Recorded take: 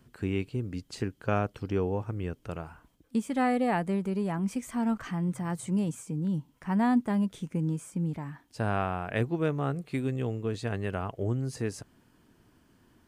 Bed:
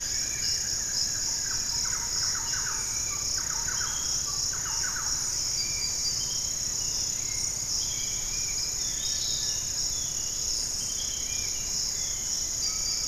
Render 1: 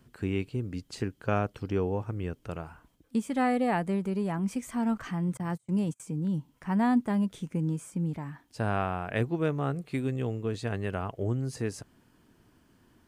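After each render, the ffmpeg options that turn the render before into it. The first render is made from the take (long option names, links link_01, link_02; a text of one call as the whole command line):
ffmpeg -i in.wav -filter_complex "[0:a]asettb=1/sr,asplit=3[link_01][link_02][link_03];[link_01]atrim=end=5.374[link_04];[link_02]atrim=start=5.37:end=6,asetpts=PTS-STARTPTS,afade=type=in:duration=0.004:curve=qsin,afade=type=out:start_time=0.626:duration=0.004:curve=qsin,agate=range=-32dB:threshold=-36dB:ratio=16:release=100:detection=peak[link_05];[link_03]atrim=start=5.996[link_06];[link_04][link_05]acrossfade=duration=0.004:curve1=hsin:curve2=qsin[link_07];[link_07][link_06]acrossfade=duration=0.004:curve1=qsin:curve2=hsin" out.wav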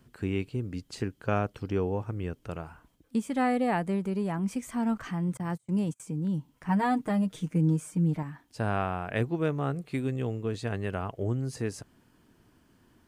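ffmpeg -i in.wav -filter_complex "[0:a]asettb=1/sr,asplit=3[link_01][link_02][link_03];[link_01]atrim=end=6.684[link_04];[link_02]atrim=start=6.68:end=8.23,asetpts=PTS-STARTPTS,afade=type=in:duration=0.004:curve=qsin,afade=type=out:start_time=1.546:duration=0.004:curve=qsin,aecho=1:1:6.5:0.85,atrim=end_sample=68355[link_05];[link_03]atrim=start=8.226[link_06];[link_04][link_05]acrossfade=duration=0.004:curve1=hsin:curve2=qsin[link_07];[link_07][link_06]acrossfade=duration=0.004:curve1=qsin:curve2=hsin" out.wav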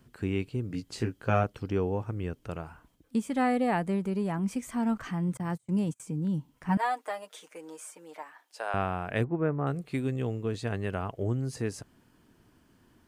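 ffmpeg -i in.wav -filter_complex "[0:a]asettb=1/sr,asplit=3[link_01][link_02][link_03];[link_01]atrim=end=0.684[link_04];[link_02]atrim=start=0.68:end=1.44,asetpts=PTS-STARTPTS,afade=type=in:duration=0.004:curve=qsin,afade=type=out:start_time=0.756:duration=0.004:curve=qsin,asplit=2[link_05][link_06];[link_06]adelay=18,volume=-4dB[link_07];[link_05][link_07]amix=inputs=2:normalize=0,atrim=end_sample=33516[link_08];[link_03]atrim=start=1.436[link_09];[link_04][link_08]acrossfade=duration=0.004:curve1=hsin:curve2=qsin[link_10];[link_10][link_09]acrossfade=duration=0.004:curve1=qsin:curve2=hsin,asettb=1/sr,asplit=3[link_11][link_12][link_13];[link_11]atrim=end=6.774[link_14];[link_12]atrim=start=6.77:end=8.74,asetpts=PTS-STARTPTS,afade=type=in:duration=0.004:curve=qsin,afade=type=out:start_time=1.966:duration=0.004:curve=qsin,highpass=frequency=520:width=0.5412,highpass=frequency=520:width=1.3066[link_15];[link_13]atrim=start=8.736[link_16];[link_14][link_15]acrossfade=duration=0.004:curve1=hsin:curve2=qsin[link_17];[link_17][link_16]acrossfade=duration=0.004:curve1=qsin:curve2=hsin,asettb=1/sr,asplit=3[link_18][link_19][link_20];[link_18]atrim=end=9.244[link_21];[link_19]atrim=start=9.24:end=9.67,asetpts=PTS-STARTPTS,afade=type=in:duration=0.004:curve=qsin,afade=type=out:start_time=0.426:duration=0.004:curve=qsin,lowpass=frequency=1900:width=0.5412,lowpass=frequency=1900:width=1.3066[link_22];[link_20]atrim=start=9.666[link_23];[link_21][link_22]acrossfade=duration=0.004:curve1=hsin:curve2=qsin[link_24];[link_24][link_23]acrossfade=duration=0.004:curve1=qsin:curve2=hsin" out.wav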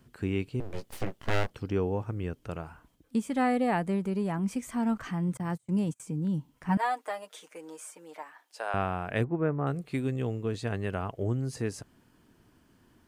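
ffmpeg -i in.wav -filter_complex "[0:a]asettb=1/sr,asplit=3[link_01][link_02][link_03];[link_01]atrim=end=0.604[link_04];[link_02]atrim=start=0.6:end=1.51,asetpts=PTS-STARTPTS,afade=type=in:duration=0.004:curve=qsin,afade=type=out:start_time=0.906:duration=0.004:curve=qsin,aeval=exprs='abs(val(0))':channel_layout=same[link_05];[link_03]atrim=start=1.506[link_06];[link_04][link_05]acrossfade=duration=0.004:curve1=hsin:curve2=qsin[link_07];[link_07][link_06]acrossfade=duration=0.004:curve1=qsin:curve2=hsin" out.wav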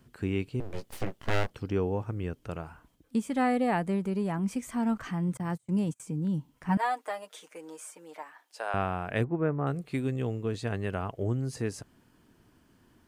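ffmpeg -i in.wav -af anull out.wav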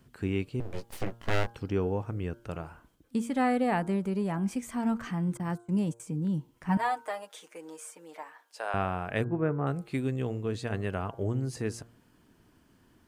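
ffmpeg -i in.wav -af "bandreject=frequency=116.3:width_type=h:width=4,bandreject=frequency=232.6:width_type=h:width=4,bandreject=frequency=348.9:width_type=h:width=4,bandreject=frequency=465.2:width_type=h:width=4,bandreject=frequency=581.5:width_type=h:width=4,bandreject=frequency=697.8:width_type=h:width=4,bandreject=frequency=814.1:width_type=h:width=4,bandreject=frequency=930.4:width_type=h:width=4,bandreject=frequency=1046.7:width_type=h:width=4,bandreject=frequency=1163:width_type=h:width=4,bandreject=frequency=1279.3:width_type=h:width=4,bandreject=frequency=1395.6:width_type=h:width=4,bandreject=frequency=1511.9:width_type=h:width=4,bandreject=frequency=1628.2:width_type=h:width=4" out.wav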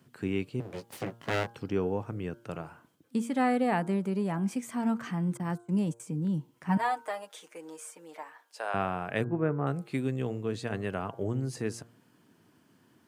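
ffmpeg -i in.wav -af "highpass=frequency=110:width=0.5412,highpass=frequency=110:width=1.3066" out.wav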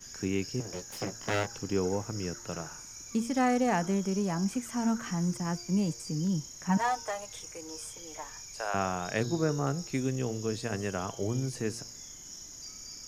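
ffmpeg -i in.wav -i bed.wav -filter_complex "[1:a]volume=-16dB[link_01];[0:a][link_01]amix=inputs=2:normalize=0" out.wav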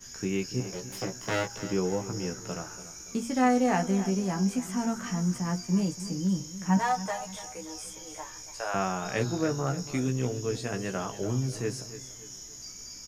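ffmpeg -i in.wav -filter_complex "[0:a]asplit=2[link_01][link_02];[link_02]adelay=16,volume=-5dB[link_03];[link_01][link_03]amix=inputs=2:normalize=0,aecho=1:1:287|574|861|1148:0.2|0.0818|0.0335|0.0138" out.wav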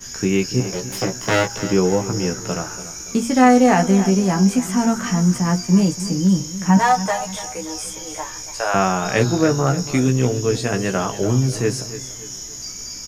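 ffmpeg -i in.wav -af "volume=11.5dB,alimiter=limit=-3dB:level=0:latency=1" out.wav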